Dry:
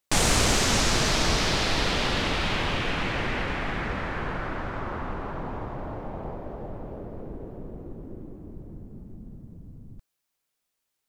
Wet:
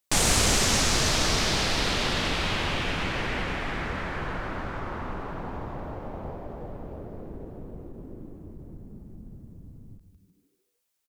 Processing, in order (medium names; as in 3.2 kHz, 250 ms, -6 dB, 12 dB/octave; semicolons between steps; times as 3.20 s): treble shelf 5.1 kHz +5.5 dB; on a send: frequency-shifting echo 151 ms, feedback 44%, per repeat -100 Hz, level -10 dB; on the sum: endings held to a fixed fall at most 230 dB/s; trim -2 dB